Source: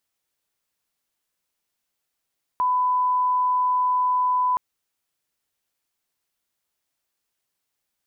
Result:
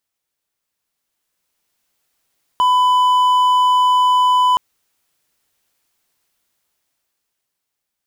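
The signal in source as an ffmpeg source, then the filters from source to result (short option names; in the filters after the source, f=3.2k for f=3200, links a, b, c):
-f lavfi -i "sine=f=1000:d=1.97:r=44100,volume=0.06dB"
-af "volume=23dB,asoftclip=hard,volume=-23dB,dynaudnorm=f=270:g=11:m=11dB"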